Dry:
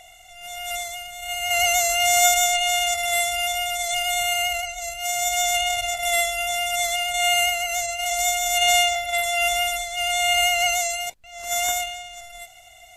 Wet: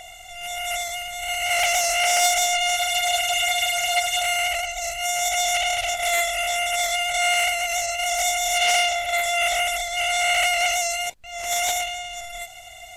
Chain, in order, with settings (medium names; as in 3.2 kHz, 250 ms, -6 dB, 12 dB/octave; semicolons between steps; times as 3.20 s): compression 1.5:1, threshold -37 dBFS, peak gain reduction 9 dB; spectral freeze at 2.79 s, 1.43 s; loudspeaker Doppler distortion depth 0.33 ms; trim +6.5 dB